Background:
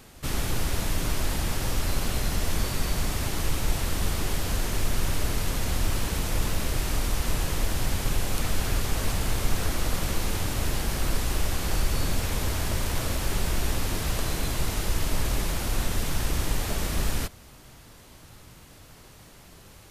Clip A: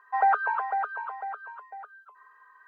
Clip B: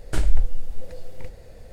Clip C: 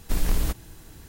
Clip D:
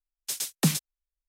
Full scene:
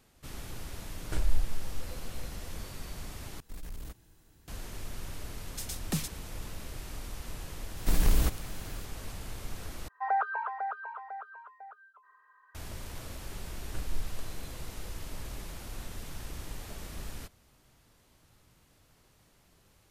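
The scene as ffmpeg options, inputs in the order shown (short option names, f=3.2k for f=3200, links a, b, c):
-filter_complex "[2:a]asplit=2[a][b];[3:a]asplit=2[c][d];[0:a]volume=-14.5dB[e];[c]asoftclip=type=tanh:threshold=-18.5dB[f];[d]acontrast=69[g];[e]asplit=3[h][i][j];[h]atrim=end=3.404[k];[f]atrim=end=1.08,asetpts=PTS-STARTPTS,volume=-15.5dB[l];[i]atrim=start=4.476:end=9.884[m];[1:a]atrim=end=2.67,asetpts=PTS-STARTPTS,volume=-6.5dB[n];[j]atrim=start=12.546[o];[a]atrim=end=1.72,asetpts=PTS-STARTPTS,volume=-9dB,afade=t=in:d=0.004:c=hsin,afade=t=out:st=1.716:d=0.004:c=hsin,adelay=990[p];[4:a]atrim=end=1.28,asetpts=PTS-STARTPTS,volume=-9dB,afade=t=in:d=0.004:c=hsin,afade=t=out:st=1.276:d=0.004:c=hsin,adelay=233289S[q];[g]atrim=end=1.08,asetpts=PTS-STARTPTS,volume=-7dB,afade=t=in:d=0.004:c=hsin,afade=t=out:st=1.076:d=0.004:c=hsin,adelay=7770[r];[b]atrim=end=1.72,asetpts=PTS-STARTPTS,volume=-16.5dB,afade=t=in:d=0.004:c=hsin,afade=t=out:st=1.716:d=0.004:c=hsin,adelay=13610[s];[k][l]acrossfade=d=0.004:c1=hsin:c2=hsin[t];[t][m]acrossfade=d=0.004:c1=hsin:c2=hsin[u];[u][n]acrossfade=d=0.004:c1=hsin:c2=hsin[v];[v][o]acrossfade=d=0.004:c1=hsin:c2=hsin[w];[w][p][q][r][s]amix=inputs=5:normalize=0"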